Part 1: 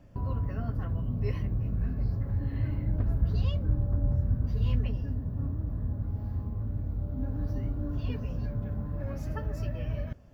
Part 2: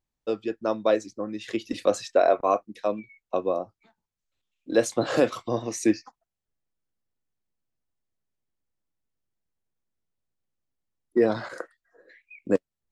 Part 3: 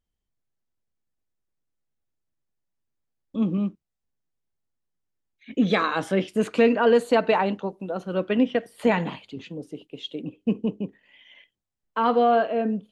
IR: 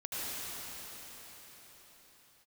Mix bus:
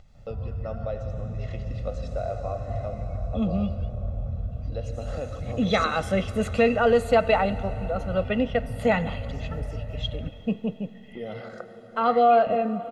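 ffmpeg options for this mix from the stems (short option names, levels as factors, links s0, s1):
-filter_complex "[0:a]adelay=150,volume=0.944,asplit=2[s0][s1];[s1]volume=0.133[s2];[1:a]lowshelf=f=440:g=9,acompressor=mode=upward:threshold=0.0708:ratio=2.5,volume=0.282,asplit=2[s3][s4];[s4]volume=0.168[s5];[2:a]volume=0.75,asplit=3[s6][s7][s8];[s7]volume=0.1[s9];[s8]apad=whole_len=462504[s10];[s0][s10]sidechaincompress=threshold=0.0501:ratio=8:attack=16:release=390[s11];[s11][s3]amix=inputs=2:normalize=0,lowpass=5800,acompressor=threshold=0.0251:ratio=6,volume=1[s12];[3:a]atrim=start_sample=2205[s13];[s5][s9]amix=inputs=2:normalize=0[s14];[s14][s13]afir=irnorm=-1:irlink=0[s15];[s2]aecho=0:1:192:1[s16];[s6][s12][s15][s16]amix=inputs=4:normalize=0,aecho=1:1:1.5:0.78"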